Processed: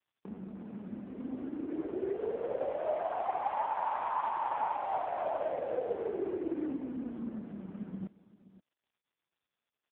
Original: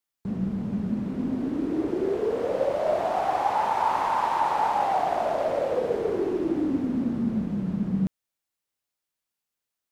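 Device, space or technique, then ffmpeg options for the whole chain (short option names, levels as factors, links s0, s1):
satellite phone: -af "highpass=330,lowpass=3100,aecho=1:1:524:0.133,volume=0.531" -ar 8000 -c:a libopencore_amrnb -b:a 4750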